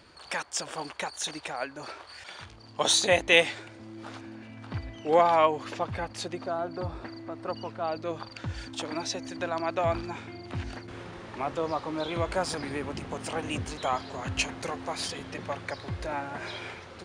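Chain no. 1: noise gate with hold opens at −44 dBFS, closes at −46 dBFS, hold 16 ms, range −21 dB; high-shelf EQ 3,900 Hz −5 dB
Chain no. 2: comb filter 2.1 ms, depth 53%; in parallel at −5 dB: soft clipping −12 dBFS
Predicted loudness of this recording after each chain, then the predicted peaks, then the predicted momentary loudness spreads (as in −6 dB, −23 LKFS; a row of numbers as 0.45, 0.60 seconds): −31.0, −25.5 LKFS; −5.0, −2.0 dBFS; 19, 19 LU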